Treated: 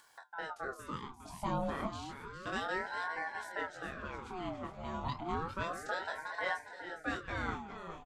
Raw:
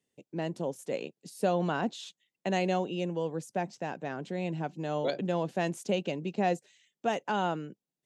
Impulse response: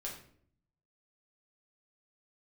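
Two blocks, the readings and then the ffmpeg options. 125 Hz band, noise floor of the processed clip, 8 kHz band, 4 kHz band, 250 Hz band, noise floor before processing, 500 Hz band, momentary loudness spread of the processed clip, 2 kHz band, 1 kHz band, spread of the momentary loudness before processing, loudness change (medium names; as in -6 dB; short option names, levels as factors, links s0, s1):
-9.0 dB, -55 dBFS, -7.5 dB, -6.0 dB, -10.0 dB, under -85 dBFS, -11.0 dB, 8 LU, +1.5 dB, -4.5 dB, 9 LU, -7.0 dB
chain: -filter_complex "[0:a]asplit=2[s0][s1];[s1]adelay=23,volume=0.631[s2];[s0][s2]amix=inputs=2:normalize=0,flanger=delay=4.9:depth=8.5:regen=-73:speed=0.56:shape=triangular,asplit=8[s3][s4][s5][s6][s7][s8][s9][s10];[s4]adelay=408,afreqshift=54,volume=0.316[s11];[s5]adelay=816,afreqshift=108,volume=0.18[s12];[s6]adelay=1224,afreqshift=162,volume=0.102[s13];[s7]adelay=1632,afreqshift=216,volume=0.0589[s14];[s8]adelay=2040,afreqshift=270,volume=0.0335[s15];[s9]adelay=2448,afreqshift=324,volume=0.0191[s16];[s10]adelay=2856,afreqshift=378,volume=0.0108[s17];[s3][s11][s12][s13][s14][s15][s16][s17]amix=inputs=8:normalize=0,acompressor=mode=upward:threshold=0.0112:ratio=2.5,aeval=exprs='val(0)*sin(2*PI*830*n/s+830*0.55/0.31*sin(2*PI*0.31*n/s))':c=same,volume=0.794"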